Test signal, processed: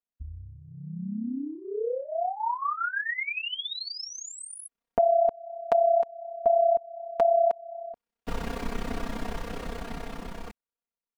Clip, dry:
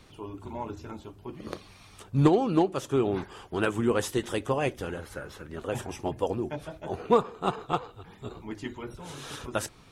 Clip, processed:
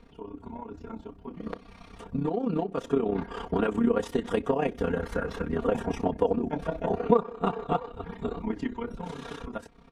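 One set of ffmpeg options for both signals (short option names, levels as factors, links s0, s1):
-af "tremolo=f=32:d=0.75,acompressor=threshold=0.0112:ratio=4,lowpass=f=1100:p=1,aecho=1:1:4.3:0.9,dynaudnorm=f=640:g=7:m=3.98,volume=1.33"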